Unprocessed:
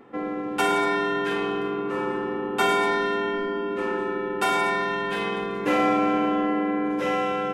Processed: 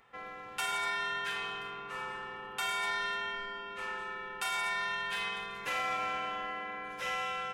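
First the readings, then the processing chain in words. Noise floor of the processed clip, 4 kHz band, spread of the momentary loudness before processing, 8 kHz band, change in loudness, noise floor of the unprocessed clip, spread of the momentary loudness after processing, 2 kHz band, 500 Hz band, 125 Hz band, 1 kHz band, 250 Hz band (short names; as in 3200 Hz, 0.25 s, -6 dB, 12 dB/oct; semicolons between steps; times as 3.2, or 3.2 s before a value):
-46 dBFS, -4.0 dB, 6 LU, -4.0 dB, -10.5 dB, -30 dBFS, 8 LU, -6.0 dB, -20.0 dB, -17.5 dB, -10.5 dB, -28.0 dB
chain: passive tone stack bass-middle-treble 10-0-10; limiter -24.5 dBFS, peak gain reduction 6.5 dB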